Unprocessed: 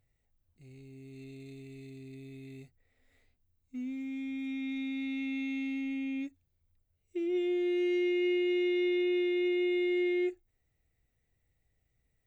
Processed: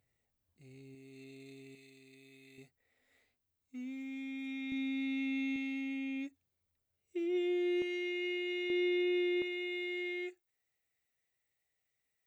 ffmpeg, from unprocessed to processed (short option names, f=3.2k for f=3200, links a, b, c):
-af "asetnsamples=n=441:p=0,asendcmd='0.95 highpass f 420;1.75 highpass f 1300;2.58 highpass f 400;4.72 highpass f 110;5.56 highpass f 320;7.82 highpass f 1000;8.7 highpass f 350;9.42 highpass f 1300',highpass=f=180:p=1"